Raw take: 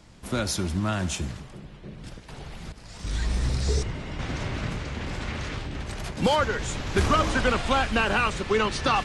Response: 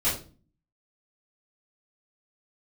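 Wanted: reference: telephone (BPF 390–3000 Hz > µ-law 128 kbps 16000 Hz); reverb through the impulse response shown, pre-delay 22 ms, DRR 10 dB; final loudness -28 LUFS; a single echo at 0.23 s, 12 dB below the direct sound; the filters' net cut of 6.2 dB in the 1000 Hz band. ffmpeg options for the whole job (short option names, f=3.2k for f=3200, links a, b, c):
-filter_complex "[0:a]equalizer=f=1k:t=o:g=-8,aecho=1:1:230:0.251,asplit=2[a][b];[1:a]atrim=start_sample=2205,adelay=22[c];[b][c]afir=irnorm=-1:irlink=0,volume=-21dB[d];[a][d]amix=inputs=2:normalize=0,highpass=390,lowpass=3k,volume=4dB" -ar 16000 -c:a pcm_mulaw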